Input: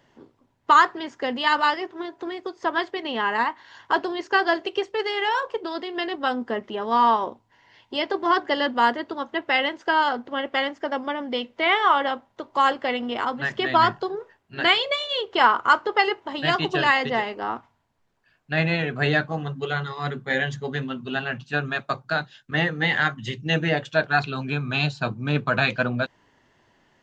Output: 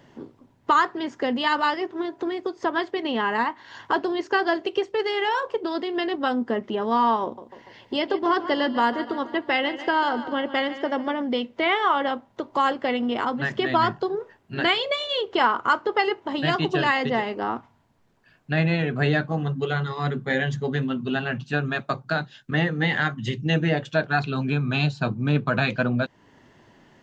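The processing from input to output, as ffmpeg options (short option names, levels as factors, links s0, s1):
-filter_complex "[0:a]asettb=1/sr,asplit=3[s0][s1][s2];[s0]atrim=end=7.234[s3];[s1]atrim=start=7.23:end=11.22,asetpts=PTS-STARTPTS,afade=t=in:d=0.004:c=qsin,afade=t=out:st=3.986:d=0.004:c=qsin,aecho=1:1:145|290|435|580:0.178|0.0854|0.041|0.0197,atrim=end_sample=175959[s4];[s2]atrim=start=11.216[s5];[s3][s4]acrossfade=d=0.004:c1=hsin:c2=qsin[s6];[s6][s5]acrossfade=d=0.004:c1=qsin:c2=hsin,equalizer=f=200:w=0.48:g=6.5,acompressor=threshold=0.0141:ratio=1.5,volume=1.68"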